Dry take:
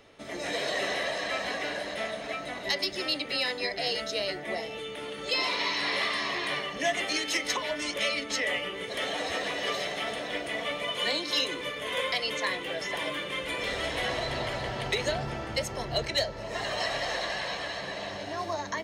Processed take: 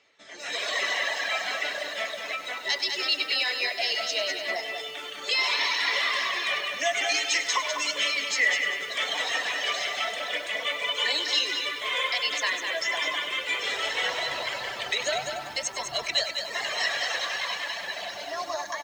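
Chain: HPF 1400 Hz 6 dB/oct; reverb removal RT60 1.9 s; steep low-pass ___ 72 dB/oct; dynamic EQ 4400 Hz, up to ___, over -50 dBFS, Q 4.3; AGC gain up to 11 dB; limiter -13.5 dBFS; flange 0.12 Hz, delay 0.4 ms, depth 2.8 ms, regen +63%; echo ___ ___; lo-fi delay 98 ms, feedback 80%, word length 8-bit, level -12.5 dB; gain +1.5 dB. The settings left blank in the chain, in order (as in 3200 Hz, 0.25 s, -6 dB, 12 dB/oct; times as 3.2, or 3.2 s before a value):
8200 Hz, -4 dB, 0.203 s, -6.5 dB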